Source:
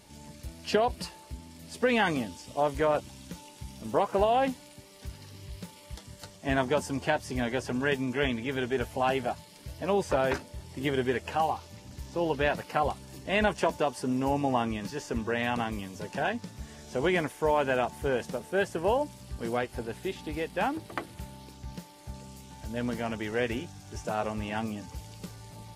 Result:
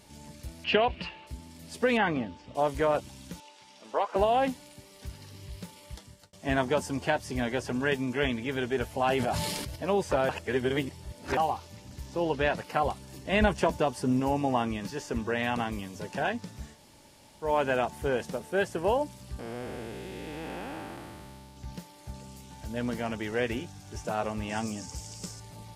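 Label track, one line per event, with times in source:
0.640000	1.270000	synth low-pass 2700 Hz, resonance Q 3.5
1.970000	2.550000	LPF 2600 Hz
3.400000	4.160000	BPF 550–5500 Hz
5.780000	6.330000	fade out equal-power
8.970000	9.760000	sustainer at most 25 dB/s
10.290000	11.370000	reverse
12.230000	12.640000	LPF 9900 Hz
13.320000	14.200000	low shelf 170 Hz +9.5 dB
16.730000	17.460000	room tone, crossfade 0.16 s
19.390000	21.570000	time blur width 0.495 s
24.490000	25.400000	band shelf 6600 Hz +11.5 dB 1 oct

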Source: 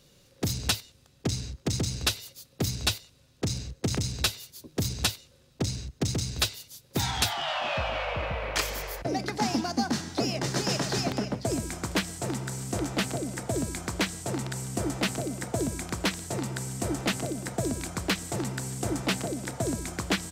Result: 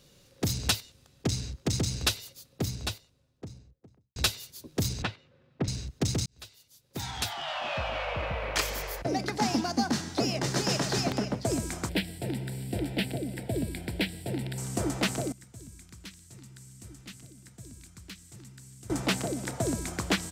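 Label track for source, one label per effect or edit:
1.980000	4.160000	studio fade out
5.020000	5.680000	Chebyshev band-pass 120–2000 Hz
6.260000	9.160000	fade in equal-power
11.890000	14.580000	fixed phaser centre 2800 Hz, stages 4
15.320000	18.900000	passive tone stack bass-middle-treble 6-0-2

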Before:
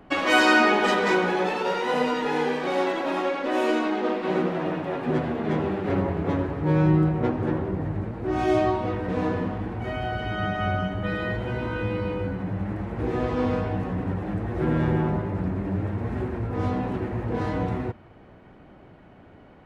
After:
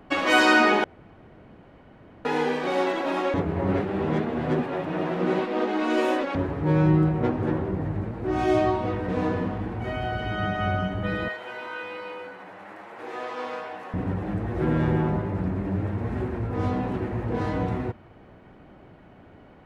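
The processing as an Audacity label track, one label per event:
0.840000	2.250000	room tone
3.340000	6.350000	reverse
11.280000	13.940000	HPF 720 Hz

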